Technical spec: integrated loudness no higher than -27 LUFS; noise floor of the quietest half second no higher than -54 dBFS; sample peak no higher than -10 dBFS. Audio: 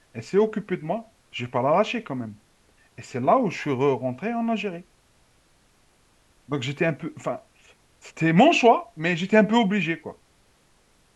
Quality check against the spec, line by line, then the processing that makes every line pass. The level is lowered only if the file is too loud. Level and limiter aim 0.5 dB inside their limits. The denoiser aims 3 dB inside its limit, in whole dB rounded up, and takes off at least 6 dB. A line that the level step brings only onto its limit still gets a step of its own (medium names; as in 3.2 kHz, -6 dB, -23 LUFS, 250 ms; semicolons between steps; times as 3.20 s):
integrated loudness -23.5 LUFS: fail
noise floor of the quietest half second -61 dBFS: pass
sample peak -5.5 dBFS: fail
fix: trim -4 dB; peak limiter -10.5 dBFS